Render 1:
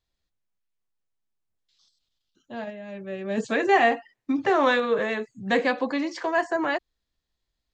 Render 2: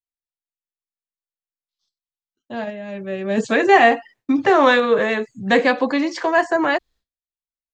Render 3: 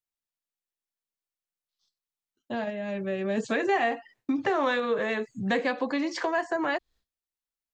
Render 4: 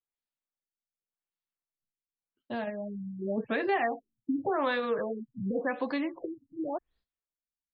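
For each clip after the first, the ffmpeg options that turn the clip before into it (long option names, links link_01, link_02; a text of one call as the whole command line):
ffmpeg -i in.wav -af "agate=range=-33dB:threshold=-52dB:ratio=3:detection=peak,volume=7dB" out.wav
ffmpeg -i in.wav -af "acompressor=threshold=-29dB:ratio=2.5" out.wav
ffmpeg -i in.wav -af "afftfilt=real='re*lt(b*sr/1024,260*pow(5200/260,0.5+0.5*sin(2*PI*0.89*pts/sr)))':imag='im*lt(b*sr/1024,260*pow(5200/260,0.5+0.5*sin(2*PI*0.89*pts/sr)))':win_size=1024:overlap=0.75,volume=-3dB" out.wav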